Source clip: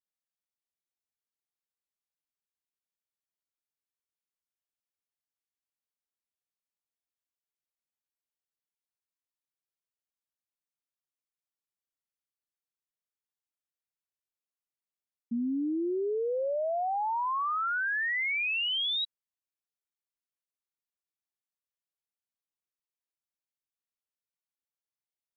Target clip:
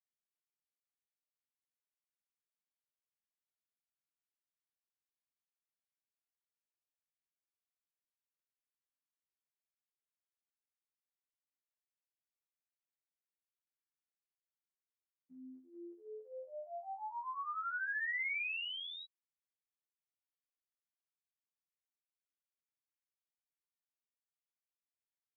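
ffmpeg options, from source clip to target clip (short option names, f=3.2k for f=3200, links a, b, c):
-af "afftfilt=real='hypot(re,im)*cos(PI*b)':imag='0':win_size=2048:overlap=0.75,lowpass=f=2.3k:w=0.5412,lowpass=f=2.3k:w=1.3066,aderivative,volume=8.5dB"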